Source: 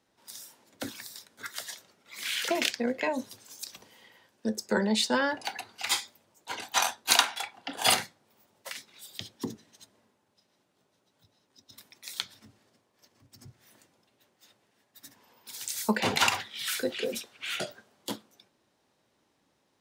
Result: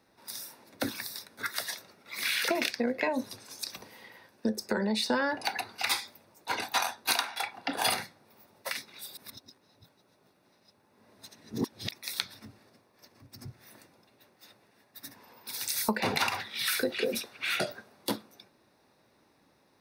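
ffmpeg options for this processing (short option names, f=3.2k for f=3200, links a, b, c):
-filter_complex "[0:a]asettb=1/sr,asplit=3[a][b][c];[a]atrim=end=3.284[d];[b]atrim=start=3.28:end=3.7,asetpts=PTS-STARTPTS,afade=t=in:d=0.004:c=qsin,afade=t=out:st=0.416:d=0.004:c=qsin,lowpass=11k[e];[c]atrim=start=3.696[f];[d][e]acrossfade=d=0.004:c1=hsin:c2=qsin[g];[g][f]acrossfade=d=0.004:c1=qsin:c2=hsin,asettb=1/sr,asplit=3[h][i][j];[h]atrim=end=4.544[k];[i]atrim=start=4.54:end=5.06,asetpts=PTS-STARTPTS,afade=t=in:d=0.004:c=qsin,afade=t=out:st=0.516:d=0.004:c=qsin,acompressor=threshold=-31dB:ratio=2:attack=3.2:release=140:knee=1:detection=peak[l];[j]atrim=start=5.056[m];[k][l]acrossfade=d=0.004:c1=hsin:c2=qsin[n];[n][m]acrossfade=d=0.004:c1=qsin:c2=hsin,asplit=3[o][p][q];[o]atrim=end=9.172[r];[p]atrim=start=9.168:end=11.912,asetpts=PTS-STARTPTS,areverse[s];[q]atrim=start=11.908[t];[r][s]acrossfade=d=0.004:c1=hsin:c2=hsin[u];[u][t]acrossfade=d=0.004:c1=hsin:c2=hsin,equalizer=f=7.2k:t=o:w=0.32:g=-13,bandreject=f=3.1k:w=5.1,acompressor=threshold=-32dB:ratio=6,volume=6.5dB"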